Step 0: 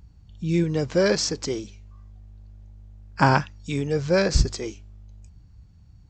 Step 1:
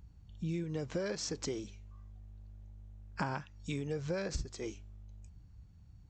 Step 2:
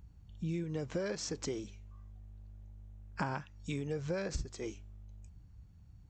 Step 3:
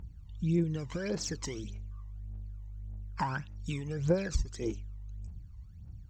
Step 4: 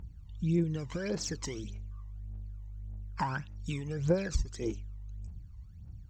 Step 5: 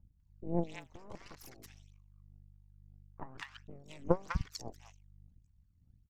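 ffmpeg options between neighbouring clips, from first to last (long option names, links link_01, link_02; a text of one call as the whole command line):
ffmpeg -i in.wav -af "equalizer=frequency=4800:width=4.5:gain=-4.5,acompressor=threshold=-27dB:ratio=10,volume=-6dB" out.wav
ffmpeg -i in.wav -af "equalizer=frequency=4500:width_type=o:width=0.77:gain=-2.5" out.wav
ffmpeg -i in.wav -af "aphaser=in_gain=1:out_gain=1:delay=1.1:decay=0.7:speed=1.7:type=triangular" out.wav
ffmpeg -i in.wav -af anull out.wav
ffmpeg -i in.wav -filter_complex "[0:a]aeval=exprs='0.158*(cos(1*acos(clip(val(0)/0.158,-1,1)))-cos(1*PI/2))+0.0562*(cos(3*acos(clip(val(0)/0.158,-1,1)))-cos(3*PI/2))+0.00631*(cos(4*acos(clip(val(0)/0.158,-1,1)))-cos(4*PI/2))+0.002*(cos(8*acos(clip(val(0)/0.158,-1,1)))-cos(8*PI/2))':channel_layout=same,acrossover=split=1100[link_01][link_02];[link_02]adelay=200[link_03];[link_01][link_03]amix=inputs=2:normalize=0,volume=4dB" out.wav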